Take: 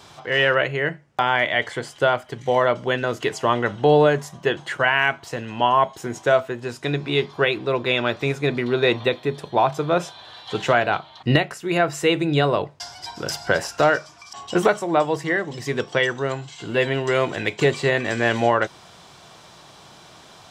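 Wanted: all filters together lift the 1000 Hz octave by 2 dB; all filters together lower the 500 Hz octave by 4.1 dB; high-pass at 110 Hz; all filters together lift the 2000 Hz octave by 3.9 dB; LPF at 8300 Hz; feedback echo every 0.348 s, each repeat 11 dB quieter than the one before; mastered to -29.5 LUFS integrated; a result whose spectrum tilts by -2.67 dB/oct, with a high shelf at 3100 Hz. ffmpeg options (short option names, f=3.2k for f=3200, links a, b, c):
-af "highpass=110,lowpass=8.3k,equalizer=f=500:t=o:g=-6.5,equalizer=f=1k:t=o:g=4,equalizer=f=2k:t=o:g=6.5,highshelf=f=3.1k:g=-8,aecho=1:1:348|696|1044:0.282|0.0789|0.0221,volume=-8.5dB"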